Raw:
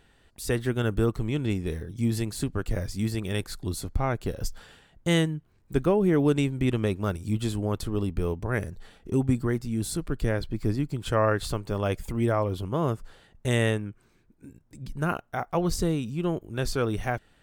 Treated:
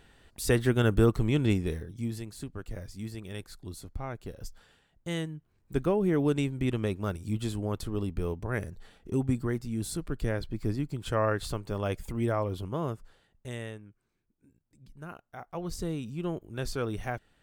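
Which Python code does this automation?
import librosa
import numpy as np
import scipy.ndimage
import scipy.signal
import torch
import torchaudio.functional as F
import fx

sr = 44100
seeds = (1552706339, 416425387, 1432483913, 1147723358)

y = fx.gain(x, sr, db=fx.line((1.52, 2.0), (2.22, -10.5), (5.16, -10.5), (5.77, -4.0), (12.65, -4.0), (13.7, -16.0), (15.12, -16.0), (16.06, -5.5)))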